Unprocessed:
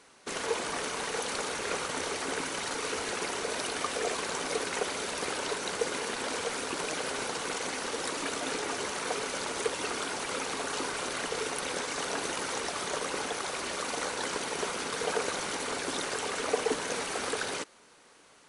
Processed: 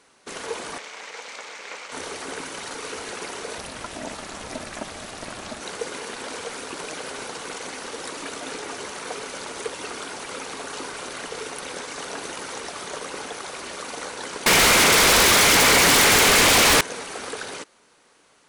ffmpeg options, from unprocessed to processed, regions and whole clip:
-filter_complex "[0:a]asettb=1/sr,asplit=3[a][b][c];[a]atrim=end=0.784[d];[b]atrim=start=0.78:end=1.92,asetpts=PTS-STARTPTS,afade=t=in:d=0.004:c=qsin,afade=t=out:st=1.136:d=0.004:c=qsin,aeval=exprs='max(val(0),0)':c=same,highpass=f=250:w=0.5412,highpass=f=250:w=1.3066,equalizer=f=260:t=q:w=4:g=-8,equalizer=f=370:t=q:w=4:g=-8,equalizer=f=2.2k:t=q:w=4:g=7,lowpass=f=7.6k:w=0.5412,lowpass=f=7.6k:w=1.3066[e];[c]atrim=start=1.916[f];[d][e]acrossfade=d=0.004:c1=hsin:c2=qsin[g];[g][f]acrossfade=d=0.004:c1=qsin:c2=hsin,asettb=1/sr,asplit=3[h][i][j];[h]atrim=end=3.584[k];[i]atrim=start=3.58:end=5.61,asetpts=PTS-STARTPTS,afade=t=in:d=0.004:c=qsin,afade=t=out:st=2.026:d=0.004:c=qsin,lowshelf=f=210:g=7.5,aeval=exprs='val(0)*sin(2*PI*190*n/s)':c=same[l];[j]atrim=start=5.606[m];[k][l]acrossfade=d=0.004:c1=hsin:c2=qsin[n];[n][m]acrossfade=d=0.004:c1=qsin:c2=hsin,asettb=1/sr,asplit=3[o][p][q];[o]atrim=end=14.464[r];[p]atrim=start=14.46:end=16.81,asetpts=PTS-STARTPTS,afade=t=in:d=0.004:c=qsin,afade=t=out:st=2.346:d=0.004:c=qsin,equalizer=f=2.2k:t=o:w=0.53:g=8.5,aeval=exprs='0.237*sin(PI/2*10*val(0)/0.237)':c=same[s];[q]atrim=start=16.806[t];[r][s]acrossfade=d=0.004:c1=hsin:c2=qsin[u];[u][t]acrossfade=d=0.004:c1=qsin:c2=hsin"

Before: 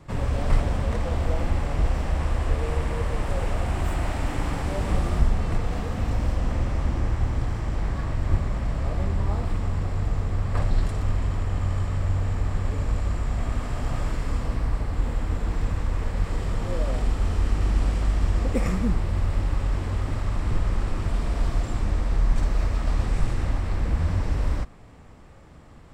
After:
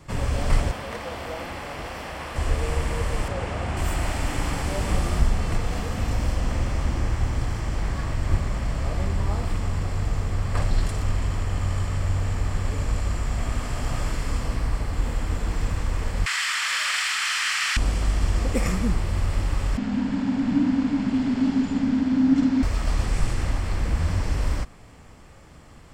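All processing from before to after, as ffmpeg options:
-filter_complex "[0:a]asettb=1/sr,asplit=3[a][b][c];[a]atrim=end=0.714[d];[b]atrim=start=0.71:end=2.36,asetpts=PTS-STARTPTS,afade=t=in:d=0.004:c=qsin,afade=t=out:st=1.646:d=0.004:c=qsin,highpass=f=440:p=1,equalizer=f=7.4k:w=1.2:g=-8[e];[c]atrim=start=2.356[f];[d][e]acrossfade=d=0.004:c1=hsin:c2=qsin[g];[g][f]acrossfade=d=0.004:c1=qsin:c2=hsin,asettb=1/sr,asplit=3[h][i][j];[h]atrim=end=3.284[k];[i]atrim=start=3.28:end=3.77,asetpts=PTS-STARTPTS,afade=t=in:d=0.004:c=qsin,afade=t=out:st=0.486:d=0.004:c=qsin,highpass=69,aemphasis=mode=reproduction:type=50fm[l];[j]atrim=start=3.766[m];[k][l]acrossfade=d=0.004:c1=hsin:c2=qsin[n];[n][m]acrossfade=d=0.004:c1=qsin:c2=hsin,asettb=1/sr,asplit=3[o][p][q];[o]atrim=end=16.264[r];[p]atrim=start=16.26:end=17.77,asetpts=PTS-STARTPTS,afade=t=in:d=0.004:c=qsin,afade=t=out:st=1.506:d=0.004:c=qsin,highpass=f=1.5k:w=0.5412,highpass=f=1.5k:w=1.3066,asplit=2[s][t];[t]highpass=f=720:p=1,volume=25dB,asoftclip=type=tanh:threshold=-11.5dB[u];[s][u]amix=inputs=2:normalize=0,lowpass=f=3.2k:p=1,volume=-6dB[v];[q]atrim=start=17.766[w];[r][v]acrossfade=d=0.004:c1=hsin:c2=qsin[x];[x][w]acrossfade=d=0.004:c1=qsin:c2=hsin,asettb=1/sr,asplit=3[y][z][aa];[y]atrim=end=19.774[ab];[z]atrim=start=19.77:end=22.63,asetpts=PTS-STARTPTS,afade=t=in:d=0.004:c=qsin,afade=t=out:st=2.856:d=0.004:c=qsin,lowpass=4.6k,afreqshift=-300[ac];[aa]atrim=start=22.626[ad];[ab][ac]acrossfade=d=0.004:c1=hsin:c2=qsin[ae];[ae][ad]acrossfade=d=0.004:c1=qsin:c2=hsin,highshelf=f=2.2k:g=8.5,bandreject=f=3.8k:w=15"

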